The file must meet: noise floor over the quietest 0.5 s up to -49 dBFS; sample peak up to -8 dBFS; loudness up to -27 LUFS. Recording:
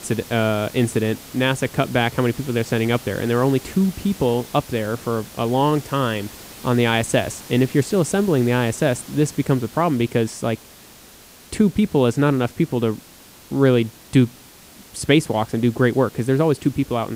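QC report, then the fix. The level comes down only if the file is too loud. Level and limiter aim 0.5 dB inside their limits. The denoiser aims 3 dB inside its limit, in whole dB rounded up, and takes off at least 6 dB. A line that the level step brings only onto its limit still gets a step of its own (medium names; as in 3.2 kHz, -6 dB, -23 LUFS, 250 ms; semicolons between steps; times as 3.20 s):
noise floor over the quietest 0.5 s -45 dBFS: fail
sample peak -3.0 dBFS: fail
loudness -20.5 LUFS: fail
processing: trim -7 dB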